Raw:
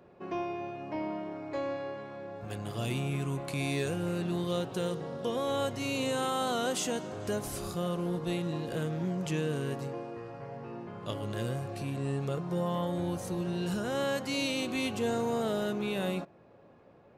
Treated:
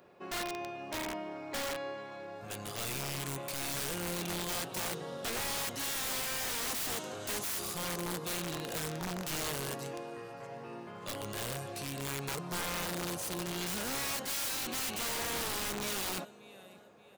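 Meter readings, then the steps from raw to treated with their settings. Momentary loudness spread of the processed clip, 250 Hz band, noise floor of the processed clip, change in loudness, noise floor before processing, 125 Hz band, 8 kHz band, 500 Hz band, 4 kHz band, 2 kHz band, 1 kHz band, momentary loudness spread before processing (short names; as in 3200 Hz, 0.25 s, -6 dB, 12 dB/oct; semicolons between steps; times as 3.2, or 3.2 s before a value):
10 LU, -9.0 dB, -54 dBFS, -2.0 dB, -57 dBFS, -9.0 dB, +7.0 dB, -7.5 dB, +2.0 dB, +1.0 dB, -2.5 dB, 8 LU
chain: tilt +2.5 dB/oct; feedback echo 0.581 s, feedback 42%, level -21.5 dB; wrapped overs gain 30.5 dB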